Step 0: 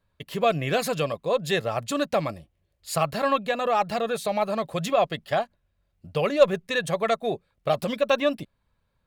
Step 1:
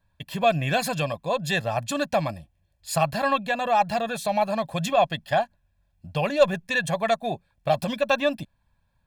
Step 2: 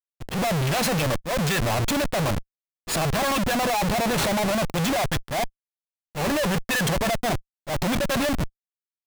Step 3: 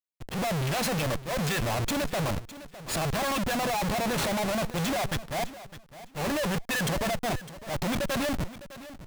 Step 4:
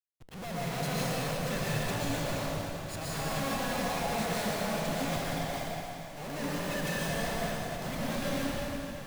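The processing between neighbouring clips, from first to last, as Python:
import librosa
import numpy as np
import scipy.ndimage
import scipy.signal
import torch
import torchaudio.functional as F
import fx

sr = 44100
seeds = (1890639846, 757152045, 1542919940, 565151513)

y1 = x + 0.64 * np.pad(x, (int(1.2 * sr / 1000.0), 0))[:len(x)]
y2 = fx.schmitt(y1, sr, flips_db=-34.0)
y2 = fx.auto_swell(y2, sr, attack_ms=145.0)
y2 = fx.leveller(y2, sr, passes=3)
y2 = y2 * 10.0 ** (-1.5 / 20.0)
y3 = fx.echo_feedback(y2, sr, ms=607, feedback_pct=20, wet_db=-15.5)
y3 = y3 * 10.0 ** (-5.0 / 20.0)
y4 = fx.comb_fb(y3, sr, f0_hz=160.0, decay_s=0.5, harmonics='all', damping=0.0, mix_pct=40)
y4 = fx.rev_plate(y4, sr, seeds[0], rt60_s=3.1, hf_ratio=0.9, predelay_ms=105, drr_db=-8.0)
y4 = y4 * 10.0 ** (-8.5 / 20.0)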